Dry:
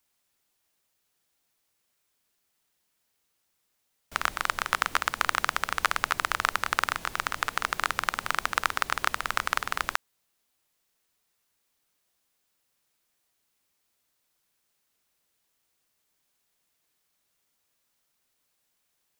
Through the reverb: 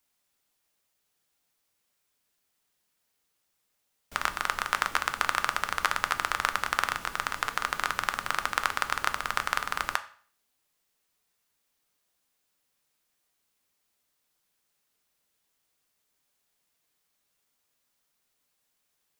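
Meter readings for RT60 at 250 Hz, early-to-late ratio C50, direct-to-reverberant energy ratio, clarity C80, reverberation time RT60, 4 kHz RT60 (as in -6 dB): 0.55 s, 15.5 dB, 9.0 dB, 19.0 dB, 0.50 s, 0.45 s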